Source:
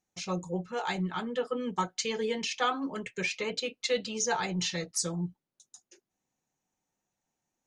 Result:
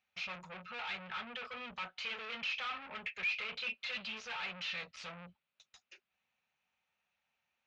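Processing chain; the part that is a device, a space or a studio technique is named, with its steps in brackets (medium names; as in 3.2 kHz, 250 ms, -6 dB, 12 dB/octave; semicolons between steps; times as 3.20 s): 3.66–4.14 s: comb 5.2 ms, depth 86%; scooped metal amplifier (valve stage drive 44 dB, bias 0.4; cabinet simulation 77–3700 Hz, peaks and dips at 120 Hz -9 dB, 240 Hz +9 dB, 380 Hz +4 dB, 570 Hz +5 dB, 1.3 kHz +5 dB, 2.5 kHz +8 dB; amplifier tone stack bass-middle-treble 10-0-10); trim +10 dB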